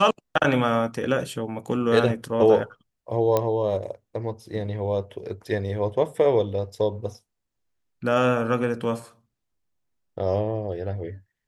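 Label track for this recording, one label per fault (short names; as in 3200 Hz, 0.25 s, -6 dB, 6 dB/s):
3.370000	3.370000	pop -9 dBFS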